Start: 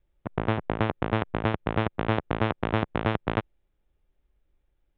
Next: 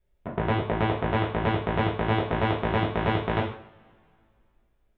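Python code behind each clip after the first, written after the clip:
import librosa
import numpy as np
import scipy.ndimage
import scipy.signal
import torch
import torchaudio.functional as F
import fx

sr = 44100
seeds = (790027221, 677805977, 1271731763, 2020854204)

y = fx.rev_double_slope(x, sr, seeds[0], early_s=0.53, late_s=2.4, knee_db=-25, drr_db=-4.5)
y = y * 10.0 ** (-3.5 / 20.0)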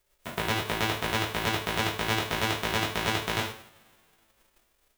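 y = fx.envelope_flatten(x, sr, power=0.3)
y = y * 10.0 ** (-3.5 / 20.0)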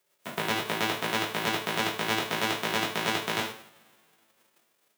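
y = scipy.signal.sosfilt(scipy.signal.butter(4, 140.0, 'highpass', fs=sr, output='sos'), x)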